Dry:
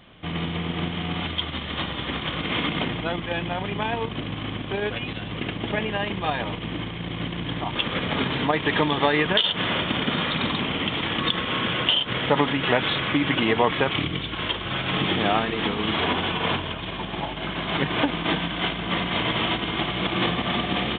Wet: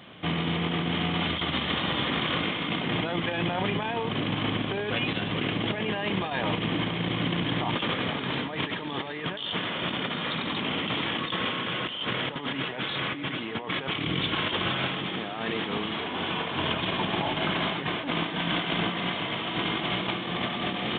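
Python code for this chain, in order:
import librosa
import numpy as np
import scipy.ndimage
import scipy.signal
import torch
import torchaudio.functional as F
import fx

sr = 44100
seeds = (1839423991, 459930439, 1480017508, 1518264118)

y = scipy.signal.sosfilt(scipy.signal.butter(2, 120.0, 'highpass', fs=sr, output='sos'), x)
y = fx.over_compress(y, sr, threshold_db=-30.0, ratio=-1.0)
y = y + 10.0 ** (-14.0 / 20.0) * np.pad(y, (int(469 * sr / 1000.0), 0))[:len(y)]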